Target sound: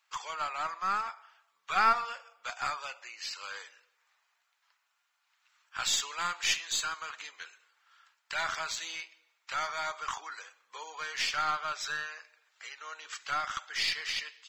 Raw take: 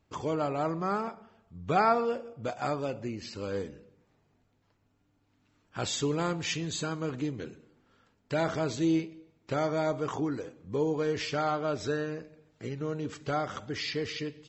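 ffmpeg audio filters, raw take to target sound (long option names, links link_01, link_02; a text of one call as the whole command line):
ffmpeg -i in.wav -filter_complex "[0:a]highpass=frequency=1100:width=0.5412,highpass=frequency=1100:width=1.3066,asplit=2[link_01][link_02];[link_02]aeval=exprs='clip(val(0),-1,0.0075)':channel_layout=same,volume=-4dB[link_03];[link_01][link_03]amix=inputs=2:normalize=0,volume=2dB" out.wav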